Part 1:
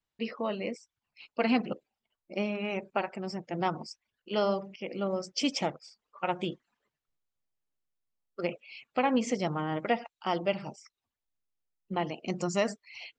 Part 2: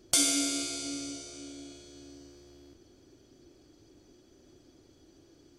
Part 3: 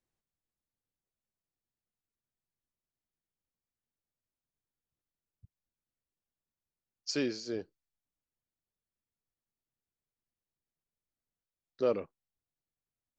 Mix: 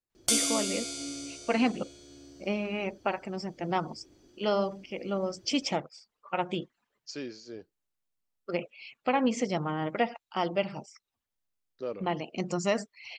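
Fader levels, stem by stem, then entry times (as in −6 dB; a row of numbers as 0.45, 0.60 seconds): +0.5, −1.0, −6.5 decibels; 0.10, 0.15, 0.00 seconds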